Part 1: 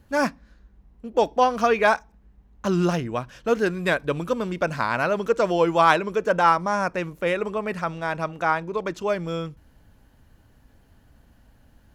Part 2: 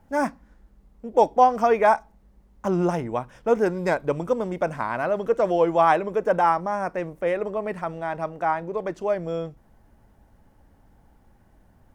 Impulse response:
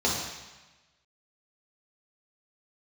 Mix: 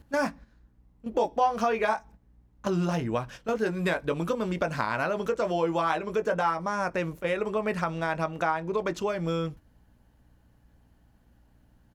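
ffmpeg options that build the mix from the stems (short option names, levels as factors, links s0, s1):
-filter_complex "[0:a]acompressor=threshold=0.0501:ratio=10,volume=1.26[s0];[1:a]highpass=120,aeval=exprs='val(0)+0.00316*(sin(2*PI*60*n/s)+sin(2*PI*2*60*n/s)/2+sin(2*PI*3*60*n/s)/3+sin(2*PI*4*60*n/s)/4+sin(2*PI*5*60*n/s)/5)':c=same,adelay=19,volume=0.266,asplit=2[s1][s2];[s2]apad=whole_len=526731[s3];[s0][s3]sidechaingate=range=0.282:threshold=0.00251:ratio=16:detection=peak[s4];[s4][s1]amix=inputs=2:normalize=0"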